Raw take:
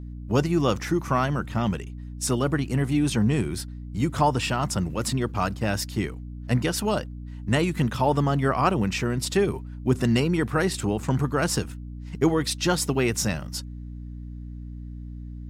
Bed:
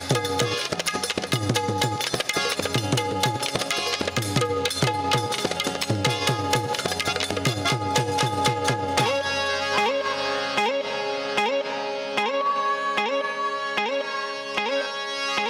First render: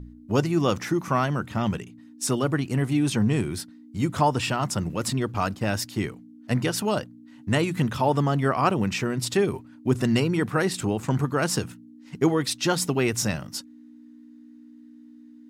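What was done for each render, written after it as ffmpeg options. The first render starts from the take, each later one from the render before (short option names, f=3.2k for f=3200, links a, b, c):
-af "bandreject=f=60:t=h:w=4,bandreject=f=120:t=h:w=4,bandreject=f=180:t=h:w=4"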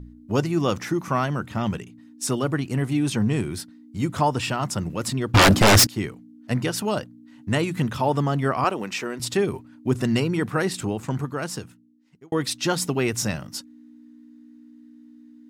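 -filter_complex "[0:a]asettb=1/sr,asplit=3[a][b][c];[a]atrim=end=5.344[d];[b]atrim=start=5.34:end=5.87,asetpts=PTS-STARTPTS,afade=t=in:d=0.004:c=qsin,afade=t=out:st=0.526:d=0.004:c=qsin,aeval=exprs='0.316*sin(PI/2*7.08*val(0)/0.316)':c=same[e];[c]atrim=start=5.866[f];[d][e]acrossfade=d=0.004:c1=hsin:c2=qsin[g];[g][f]acrossfade=d=0.004:c1=qsin:c2=hsin,asettb=1/sr,asplit=3[h][i][j];[h]atrim=end=8.644[k];[i]atrim=start=8.64:end=9.2,asetpts=PTS-STARTPTS,afade=t=in:d=0.004:c=qsin,afade=t=out:st=0.556:d=0.004:c=qsin,highpass=320[l];[j]atrim=start=9.196[m];[k][l]acrossfade=d=0.004:c1=hsin:c2=qsin[n];[n][m]acrossfade=d=0.004:c1=qsin:c2=hsin,asplit=2[o][p];[o]atrim=end=12.32,asetpts=PTS-STARTPTS,afade=t=out:st=10.69:d=1.63[q];[p]atrim=start=12.32,asetpts=PTS-STARTPTS,afade=t=in:d=0.004:c=hsin[r];[q][r]concat=n=2:v=0:a=1"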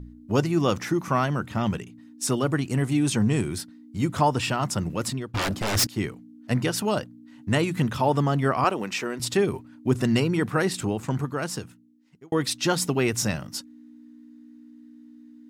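-filter_complex "[0:a]asettb=1/sr,asplit=3[a][b][c];[a]atrim=end=2.514[d];[b]atrim=start=2.51:end=3.58,asetpts=PTS-STARTPTS,afade=t=in:d=0.004:c=qsin,afade=t=out:st=1.066:d=0.004:c=qsin,equalizer=f=7.7k:w=1.5:g=5[e];[c]atrim=start=3.576[f];[d][e]acrossfade=d=0.004:c1=hsin:c2=qsin[g];[g][f]acrossfade=d=0.004:c1=qsin:c2=hsin,asplit=3[h][i][j];[h]atrim=end=5.3,asetpts=PTS-STARTPTS,afade=t=out:st=5.02:d=0.28:silence=0.237137[k];[i]atrim=start=5.3:end=5.73,asetpts=PTS-STARTPTS,volume=-12.5dB[l];[j]atrim=start=5.73,asetpts=PTS-STARTPTS,afade=t=in:d=0.28:silence=0.237137[m];[k][l][m]concat=n=3:v=0:a=1"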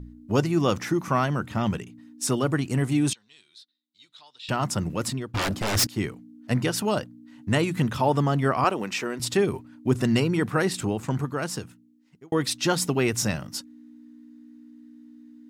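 -filter_complex "[0:a]asettb=1/sr,asplit=3[a][b][c];[a]atrim=end=3.134[d];[b]atrim=start=3.13:end=4.49,asetpts=PTS-STARTPTS,afade=t=in:d=0.004:c=qsin,afade=t=out:st=1.356:d=0.004:c=qsin,bandpass=f=3.8k:t=q:w=10[e];[c]atrim=start=4.486[f];[d][e]acrossfade=d=0.004:c1=hsin:c2=qsin[g];[g][f]acrossfade=d=0.004:c1=qsin:c2=hsin"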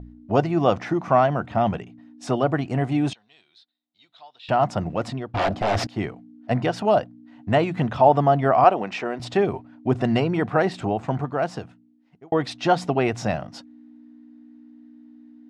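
-af "lowpass=3.4k,equalizer=f=700:w=2.7:g=14.5"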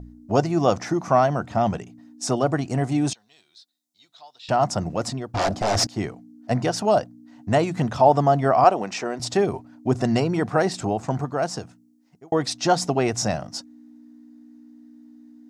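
-af "highshelf=f=4.3k:t=q:w=1.5:g=11"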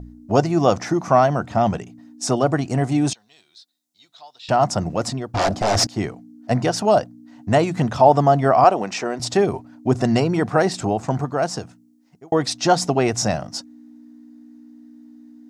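-af "volume=3dB,alimiter=limit=-1dB:level=0:latency=1"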